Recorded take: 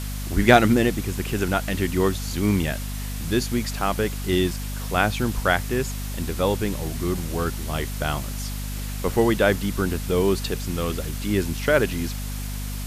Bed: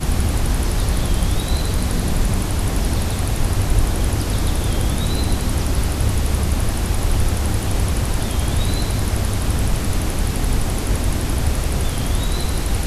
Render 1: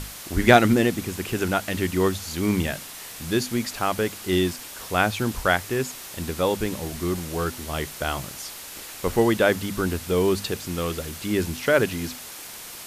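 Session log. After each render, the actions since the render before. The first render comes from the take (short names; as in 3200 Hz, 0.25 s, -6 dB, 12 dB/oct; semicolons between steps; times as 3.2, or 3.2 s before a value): notches 50/100/150/200/250 Hz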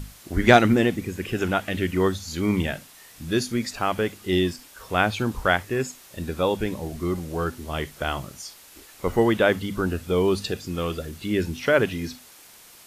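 noise print and reduce 10 dB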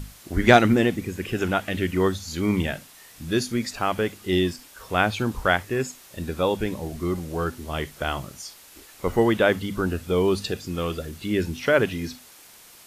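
nothing audible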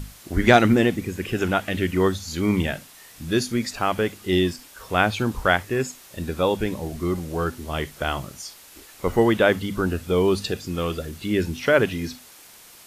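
gain +1.5 dB; limiter -3 dBFS, peak gain reduction 2.5 dB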